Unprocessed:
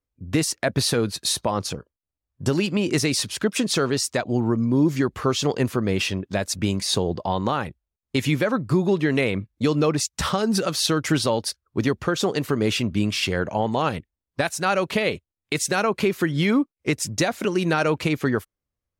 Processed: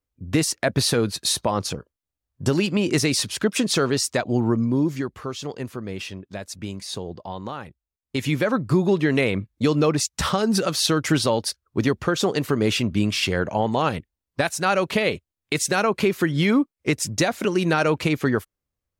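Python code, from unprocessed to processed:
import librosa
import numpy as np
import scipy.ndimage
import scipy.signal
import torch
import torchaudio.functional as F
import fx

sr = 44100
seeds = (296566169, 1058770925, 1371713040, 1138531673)

y = fx.gain(x, sr, db=fx.line((4.58, 1.0), (5.27, -9.0), (7.66, -9.0), (8.51, 1.0)))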